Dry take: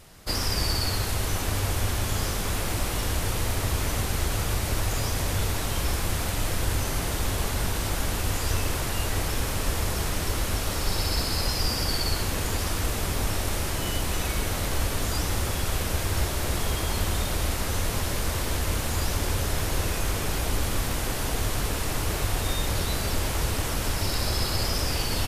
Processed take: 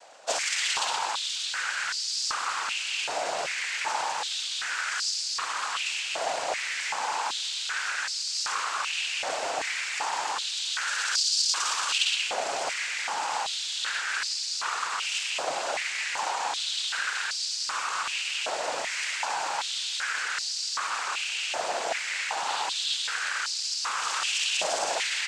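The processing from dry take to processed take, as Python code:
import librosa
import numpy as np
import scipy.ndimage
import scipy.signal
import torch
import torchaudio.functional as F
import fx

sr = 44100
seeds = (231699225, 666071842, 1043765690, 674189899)

y = fx.noise_vocoder(x, sr, seeds[0], bands=8)
y = fx.filter_held_highpass(y, sr, hz=2.6, low_hz=660.0, high_hz=4700.0)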